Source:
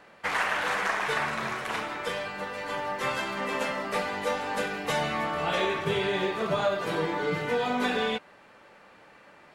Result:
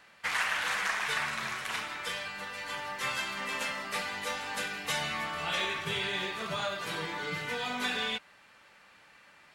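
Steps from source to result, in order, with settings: passive tone stack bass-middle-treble 5-5-5; gain +8.5 dB

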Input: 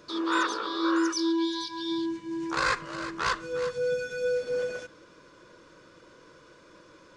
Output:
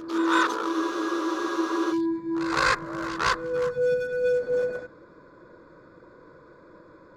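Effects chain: Wiener smoothing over 15 samples; pre-echo 0.163 s -13 dB; spectral freeze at 0.75, 1.17 s; gain +4.5 dB

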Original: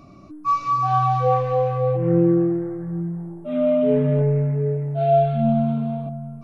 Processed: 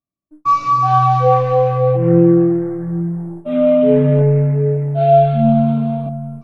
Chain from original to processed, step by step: gate -36 dBFS, range -53 dB; gain +6.5 dB

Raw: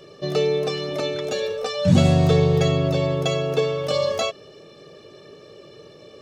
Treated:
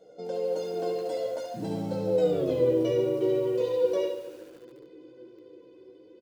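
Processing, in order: Doppler pass-by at 2.41, 58 m/s, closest 12 m; high shelf 4200 Hz +4 dB; reverse; compressor 5:1, threshold -40 dBFS, peak gain reduction 19.5 dB; reverse; vibrato 11 Hz 17 cents; small resonant body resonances 340/480 Hz, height 18 dB, ringing for 30 ms; flange 0.61 Hz, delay 6.3 ms, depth 5.2 ms, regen +51%; early reflections 16 ms -5.5 dB, 72 ms -7.5 dB; on a send at -12 dB: reverb RT60 0.65 s, pre-delay 58 ms; on the sum: lo-fi delay 0.144 s, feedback 55%, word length 8-bit, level -14 dB; gain +3.5 dB

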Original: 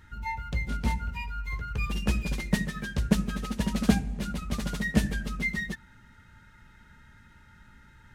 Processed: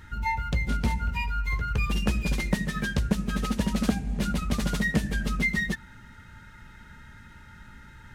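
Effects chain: compressor 5:1, threshold -28 dBFS, peak gain reduction 12.5 dB; gain +6.5 dB

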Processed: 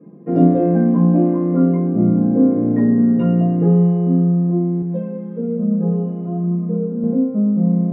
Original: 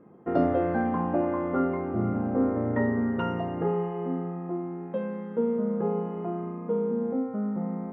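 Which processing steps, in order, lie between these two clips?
reverb RT60 0.20 s, pre-delay 3 ms, DRR -5 dB; dynamic EQ 1600 Hz, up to -3 dB, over -22 dBFS, Q 0.71; 4.82–7.04 flange 1.1 Hz, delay 4.8 ms, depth 3.8 ms, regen +40%; gain -10.5 dB

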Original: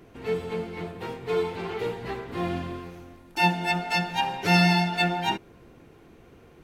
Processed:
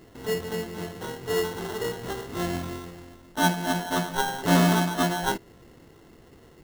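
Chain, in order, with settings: 3.39–3.92 LPF 3100 Hz; sample-rate reducer 2400 Hz, jitter 0%

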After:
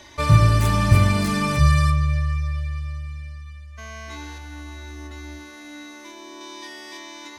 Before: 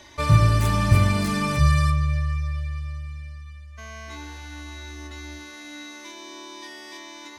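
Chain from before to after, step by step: 4.38–6.41 bell 4200 Hz -5.5 dB 2.6 oct; gain +2 dB

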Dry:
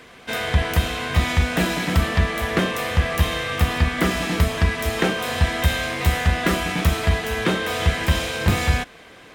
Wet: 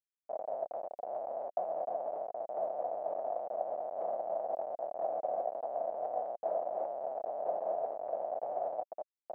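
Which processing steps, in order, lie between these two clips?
reverse delay 0.475 s, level -4.5 dB; Schmitt trigger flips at -17.5 dBFS; Butterworth band-pass 660 Hz, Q 3.8

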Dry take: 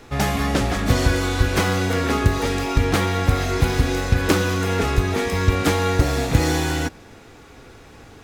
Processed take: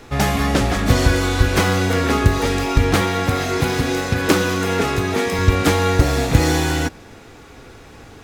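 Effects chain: 3.01–5.39 HPF 120 Hz 12 dB/oct; gain +3 dB

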